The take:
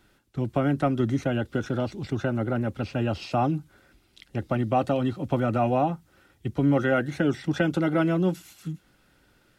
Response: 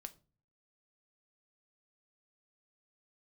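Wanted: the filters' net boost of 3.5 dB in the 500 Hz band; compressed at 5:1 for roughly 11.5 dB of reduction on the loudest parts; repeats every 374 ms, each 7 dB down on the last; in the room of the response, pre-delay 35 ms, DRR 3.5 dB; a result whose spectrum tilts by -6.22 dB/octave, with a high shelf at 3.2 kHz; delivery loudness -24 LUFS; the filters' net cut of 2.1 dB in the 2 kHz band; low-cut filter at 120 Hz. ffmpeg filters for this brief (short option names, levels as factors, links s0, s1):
-filter_complex "[0:a]highpass=120,equalizer=f=500:t=o:g=4.5,equalizer=f=2000:t=o:g=-6,highshelf=f=3200:g=7,acompressor=threshold=0.0316:ratio=5,aecho=1:1:374|748|1122|1496|1870:0.447|0.201|0.0905|0.0407|0.0183,asplit=2[s0][s1];[1:a]atrim=start_sample=2205,adelay=35[s2];[s1][s2]afir=irnorm=-1:irlink=0,volume=1.26[s3];[s0][s3]amix=inputs=2:normalize=0,volume=2.66"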